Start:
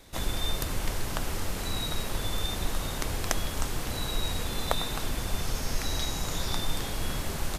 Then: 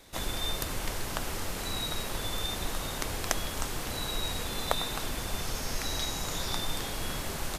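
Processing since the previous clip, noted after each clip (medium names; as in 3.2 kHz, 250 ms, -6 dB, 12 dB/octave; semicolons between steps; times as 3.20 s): bass shelf 220 Hz -5.5 dB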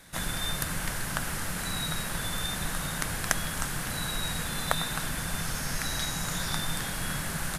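fifteen-band graphic EQ 160 Hz +11 dB, 400 Hz -5 dB, 1.6 kHz +9 dB, 10 kHz +8 dB; trim -1 dB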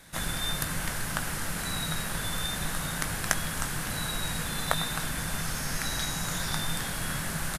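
doubling 19 ms -12 dB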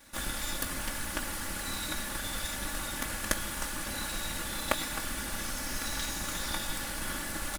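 comb filter that takes the minimum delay 3.5 ms; trim -1.5 dB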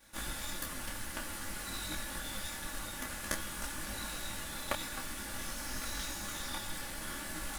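detune thickener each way 18 cents; trim -1.5 dB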